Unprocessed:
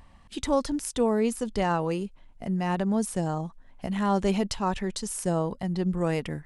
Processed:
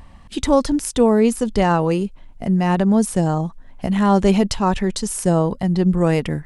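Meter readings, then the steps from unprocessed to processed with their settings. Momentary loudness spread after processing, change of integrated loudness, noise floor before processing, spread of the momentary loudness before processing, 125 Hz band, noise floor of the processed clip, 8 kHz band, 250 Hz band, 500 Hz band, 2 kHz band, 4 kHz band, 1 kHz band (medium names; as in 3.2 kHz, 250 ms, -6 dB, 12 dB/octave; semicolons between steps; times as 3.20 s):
9 LU, +9.5 dB, -55 dBFS, 9 LU, +10.5 dB, -44 dBFS, +7.5 dB, +10.5 dB, +9.0 dB, +7.5 dB, +7.5 dB, +8.0 dB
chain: bass shelf 430 Hz +3.5 dB; trim +7.5 dB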